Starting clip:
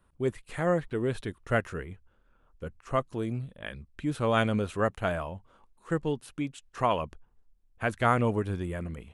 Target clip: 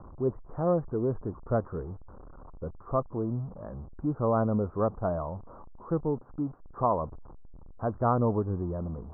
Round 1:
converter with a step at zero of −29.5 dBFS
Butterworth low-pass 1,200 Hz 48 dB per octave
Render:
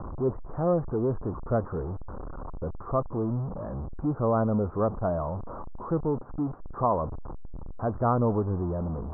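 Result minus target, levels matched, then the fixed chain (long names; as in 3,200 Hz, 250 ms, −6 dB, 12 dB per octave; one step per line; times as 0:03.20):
converter with a step at zero: distortion +9 dB
converter with a step at zero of −40.5 dBFS
Butterworth low-pass 1,200 Hz 48 dB per octave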